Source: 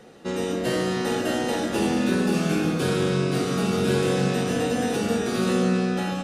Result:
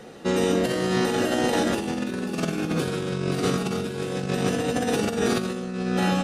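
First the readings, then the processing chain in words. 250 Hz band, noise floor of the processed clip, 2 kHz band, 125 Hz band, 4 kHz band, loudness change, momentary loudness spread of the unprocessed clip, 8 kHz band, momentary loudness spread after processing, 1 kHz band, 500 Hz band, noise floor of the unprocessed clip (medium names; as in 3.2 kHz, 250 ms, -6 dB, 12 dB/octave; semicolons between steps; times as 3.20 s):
-1.5 dB, -32 dBFS, -0.5 dB, -2.0 dB, -0.5 dB, -1.5 dB, 3 LU, 0.0 dB, 6 LU, +0.5 dB, -1.0 dB, -29 dBFS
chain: compressor with a negative ratio -26 dBFS, ratio -0.5; trim +2 dB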